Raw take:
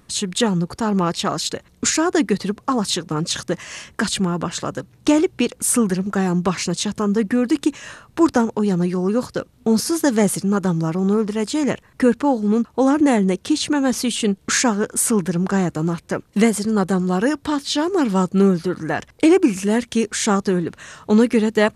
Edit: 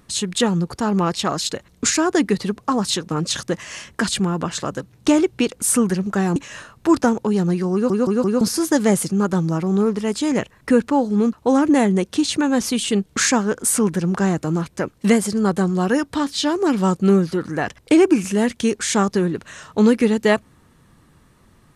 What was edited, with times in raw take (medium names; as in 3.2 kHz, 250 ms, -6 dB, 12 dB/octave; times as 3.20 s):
6.36–7.68 s: delete
9.05 s: stutter in place 0.17 s, 4 plays